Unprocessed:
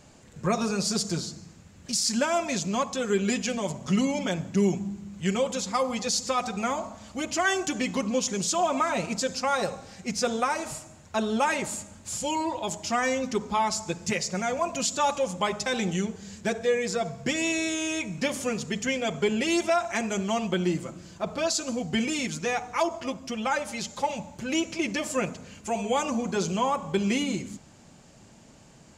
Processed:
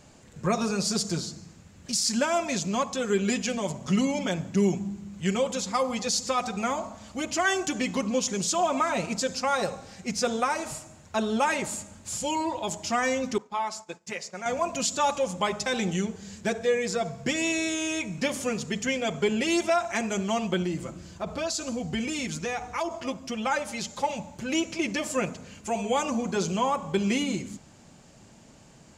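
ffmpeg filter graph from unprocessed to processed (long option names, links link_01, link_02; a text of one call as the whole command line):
ffmpeg -i in.wav -filter_complex "[0:a]asettb=1/sr,asplit=3[link_01][link_02][link_03];[link_01]atrim=end=13.384[link_04];[link_02]atrim=start=13.38:end=14.46,asetpts=PTS-STARTPTS,afade=type=in:duration=0.004:curve=qsin,afade=type=out:start_time=1.076:duration=0.004:curve=qsin,agate=range=-33dB:threshold=-33dB:ratio=3:release=100:detection=peak,highpass=frequency=850:poles=1,highshelf=frequency=2300:gain=-9.5[link_05];[link_03]atrim=start=14.456[link_06];[link_04][link_05]acrossfade=duration=0.004:curve1=hsin:curve2=qsin[link_07];[link_07][link_06]acrossfade=duration=0.004:curve1=qsin:curve2=hsin,asettb=1/sr,asplit=3[link_08][link_09][link_10];[link_08]atrim=end=20.624[link_11];[link_09]atrim=start=20.62:end=22.91,asetpts=PTS-STARTPTS,afade=type=in:duration=0.004:curve=qsin,afade=type=out:start_time=2.286:duration=0.004:curve=qsin,equalizer=frequency=64:width_type=o:width=0.9:gain=10,acompressor=threshold=-28dB:ratio=2:attack=3.2:release=140:knee=1:detection=peak[link_12];[link_10]atrim=start=22.906[link_13];[link_11][link_12]acrossfade=duration=0.004:curve1=hsin:curve2=qsin[link_14];[link_14][link_13]acrossfade=duration=0.004:curve1=qsin:curve2=hsin" out.wav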